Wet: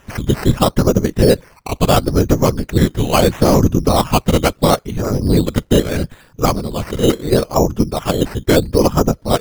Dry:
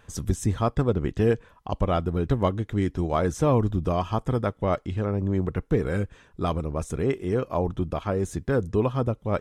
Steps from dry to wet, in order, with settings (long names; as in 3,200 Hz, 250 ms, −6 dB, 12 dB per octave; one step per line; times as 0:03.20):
0:02.78–0:03.59: variable-slope delta modulation 32 kbit/s
in parallel at +1 dB: output level in coarse steps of 24 dB
on the sum: random phases in short frames
sample-and-hold swept by an LFO 10×, swing 60% 0.75 Hz
boost into a limiter +8 dB
level −1 dB